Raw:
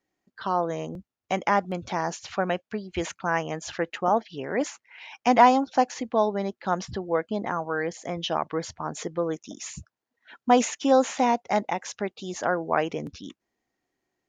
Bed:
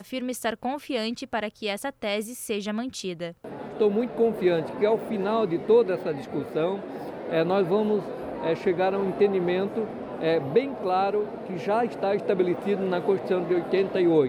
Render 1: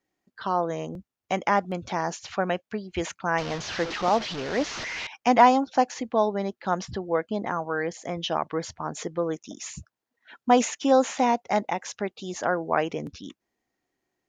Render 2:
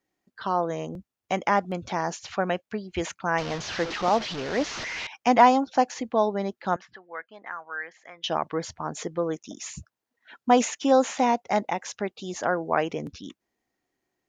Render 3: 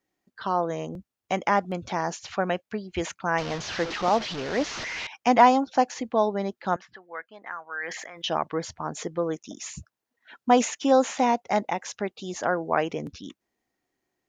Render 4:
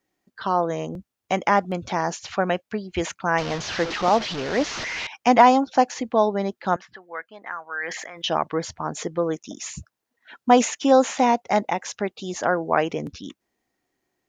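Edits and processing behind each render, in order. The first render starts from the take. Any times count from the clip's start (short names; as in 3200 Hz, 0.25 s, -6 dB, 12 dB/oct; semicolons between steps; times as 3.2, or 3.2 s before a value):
3.38–5.07 delta modulation 32 kbps, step -27 dBFS
6.76–8.24 band-pass 1700 Hz, Q 2.3
7.77–8.42 sustainer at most 39 dB/s
gain +3.5 dB; limiter -3 dBFS, peak gain reduction 2.5 dB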